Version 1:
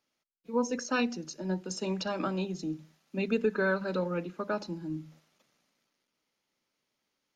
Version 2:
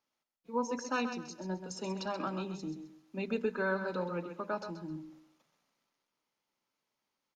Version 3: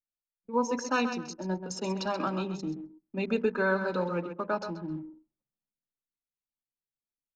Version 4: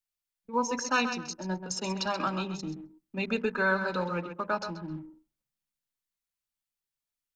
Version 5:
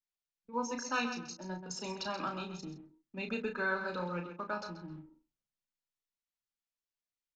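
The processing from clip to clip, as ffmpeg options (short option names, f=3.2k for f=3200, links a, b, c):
-af "equalizer=f=950:t=o:w=0.8:g=6.5,aecho=1:1:131|262|393:0.355|0.103|0.0298,volume=-6dB"
-af "anlmdn=0.00398,volume=5.5dB"
-af "equalizer=f=360:w=0.5:g=-8.5,volume=5dB"
-filter_complex "[0:a]lowpass=f=7.6k:w=0.5412,lowpass=f=7.6k:w=1.3066,asplit=2[a][b];[b]adelay=34,volume=-6.5dB[c];[a][c]amix=inputs=2:normalize=0,volume=-7.5dB"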